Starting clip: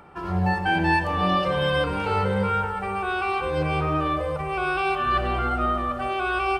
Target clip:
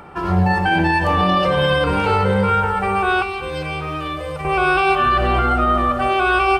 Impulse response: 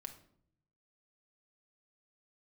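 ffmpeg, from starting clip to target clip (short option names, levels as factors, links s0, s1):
-filter_complex "[0:a]asettb=1/sr,asplit=3[s0][s1][s2];[s0]atrim=end=3.224[s3];[s1]atrim=start=3.22:end=4.45,asetpts=PTS-STARTPTS,afade=t=in:d=0.004:c=qsin,afade=t=out:st=1.226:d=0.004:c=qsin,acrossover=split=94|410|2100[s4][s5][s6][s7];[s4]acompressor=threshold=0.00398:ratio=4[s8];[s5]acompressor=threshold=0.00891:ratio=4[s9];[s6]acompressor=threshold=0.01:ratio=4[s10];[s7]acompressor=threshold=0.0112:ratio=4[s11];[s8][s9][s10][s11]amix=inputs=4:normalize=0[s12];[s2]atrim=start=4.446[s13];[s3][s12]acrossfade=d=0.004:c1=hsin:c2=qsin[s14];[s14][s13]acrossfade=d=0.004:c1=qsin:c2=hsin,alimiter=level_in=6.31:limit=0.891:release=50:level=0:latency=1,volume=0.447"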